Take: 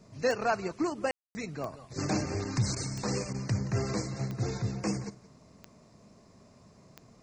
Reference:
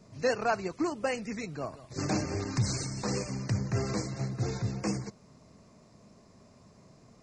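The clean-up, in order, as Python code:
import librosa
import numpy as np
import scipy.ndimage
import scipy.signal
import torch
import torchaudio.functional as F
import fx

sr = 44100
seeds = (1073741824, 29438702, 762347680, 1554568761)

y = fx.fix_declick_ar(x, sr, threshold=10.0)
y = fx.fix_ambience(y, sr, seeds[0], print_start_s=6.12, print_end_s=6.62, start_s=1.11, end_s=1.35)
y = fx.fix_interpolate(y, sr, at_s=(2.75, 3.33), length_ms=12.0)
y = fx.fix_echo_inverse(y, sr, delay_ms=173, level_db=-19.0)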